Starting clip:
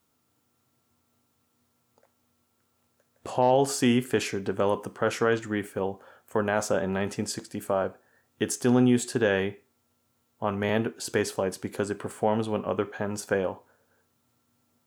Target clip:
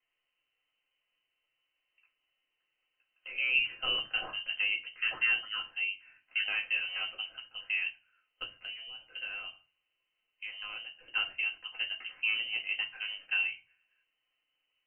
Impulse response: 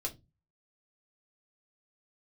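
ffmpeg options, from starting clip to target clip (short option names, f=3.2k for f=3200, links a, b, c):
-filter_complex "[0:a]lowpass=f=2.7k:t=q:w=0.5098,lowpass=f=2.7k:t=q:w=0.6013,lowpass=f=2.7k:t=q:w=0.9,lowpass=f=2.7k:t=q:w=2.563,afreqshift=-3200,asettb=1/sr,asplit=3[a][b][c];[a]atrim=end=8.424[d];[b]atrim=start=8.42:end=10.99,asetpts=PTS-STARTPTS,afade=t=in:d=0.004:c=qsin,afade=t=out:st=2.566:d=0.004:c=qsin,acompressor=threshold=-31dB:ratio=6[e];[c]atrim=start=10.986[f];[d][e]acrossfade=d=0.004:c1=hsin:c2=qsin[g];[g][f]acrossfade=d=0.004:c1=qsin:c2=hsin[h];[1:a]atrim=start_sample=2205[i];[h][i]afir=irnorm=-1:irlink=0,volume=-7.5dB"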